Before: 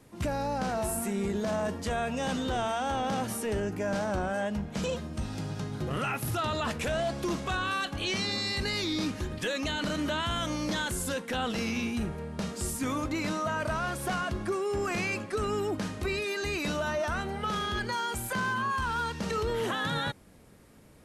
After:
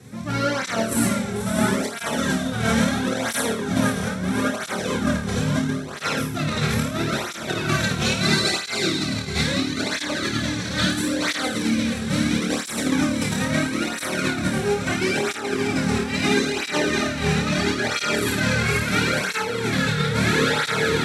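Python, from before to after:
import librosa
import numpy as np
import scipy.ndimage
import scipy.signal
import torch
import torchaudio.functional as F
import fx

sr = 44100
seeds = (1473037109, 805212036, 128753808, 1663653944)

y = fx.lower_of_two(x, sr, delay_ms=0.52)
y = scipy.signal.sosfilt(scipy.signal.butter(2, 8000.0, 'lowpass', fs=sr, output='sos'), y)
y = fx.low_shelf(y, sr, hz=140.0, db=11.5)
y = fx.echo_diffused(y, sr, ms=572, feedback_pct=75, wet_db=-3.5)
y = fx.over_compress(y, sr, threshold_db=-29.0, ratio=-0.5)
y = scipy.signal.sosfilt(scipy.signal.butter(2, 110.0, 'highpass', fs=sr, output='sos'), y)
y = fx.high_shelf(y, sr, hz=5600.0, db=7.5)
y = fx.room_flutter(y, sr, wall_m=4.6, rt60_s=0.49)
y = fx.flanger_cancel(y, sr, hz=0.75, depth_ms=3.5)
y = y * librosa.db_to_amplitude(8.5)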